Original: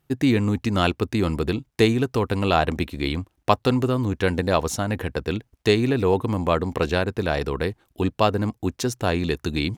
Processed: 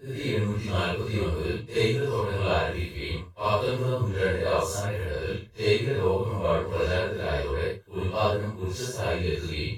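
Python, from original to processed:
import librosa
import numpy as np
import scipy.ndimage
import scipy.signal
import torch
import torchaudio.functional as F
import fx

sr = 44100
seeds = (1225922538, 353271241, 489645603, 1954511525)

y = fx.phase_scramble(x, sr, seeds[0], window_ms=200)
y = y + 0.77 * np.pad(y, (int(1.9 * sr / 1000.0), 0))[:len(y)]
y = y * librosa.db_to_amplitude(-6.0)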